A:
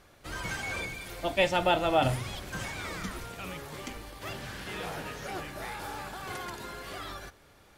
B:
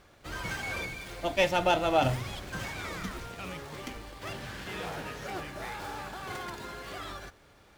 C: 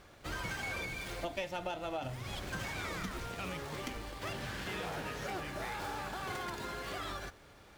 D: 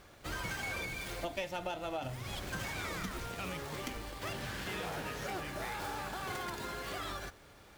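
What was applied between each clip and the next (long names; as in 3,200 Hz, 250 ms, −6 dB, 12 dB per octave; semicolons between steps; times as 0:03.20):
windowed peak hold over 3 samples
downward compressor 12 to 1, threshold −36 dBFS, peak gain reduction 17.5 dB; level +1 dB
high-shelf EQ 9,000 Hz +5.5 dB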